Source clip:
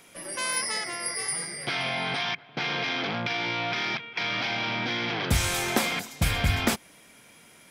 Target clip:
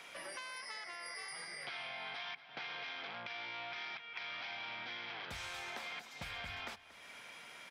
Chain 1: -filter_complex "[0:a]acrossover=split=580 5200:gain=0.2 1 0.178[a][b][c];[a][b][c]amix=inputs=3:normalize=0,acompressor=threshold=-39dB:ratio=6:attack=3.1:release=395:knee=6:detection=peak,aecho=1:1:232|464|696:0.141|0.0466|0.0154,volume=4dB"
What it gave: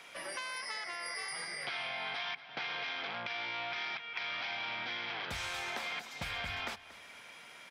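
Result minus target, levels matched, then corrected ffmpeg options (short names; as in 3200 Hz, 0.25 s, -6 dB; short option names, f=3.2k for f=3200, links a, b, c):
compressor: peak gain reduction -6 dB
-filter_complex "[0:a]acrossover=split=580 5200:gain=0.2 1 0.178[a][b][c];[a][b][c]amix=inputs=3:normalize=0,acompressor=threshold=-46dB:ratio=6:attack=3.1:release=395:knee=6:detection=peak,aecho=1:1:232|464|696:0.141|0.0466|0.0154,volume=4dB"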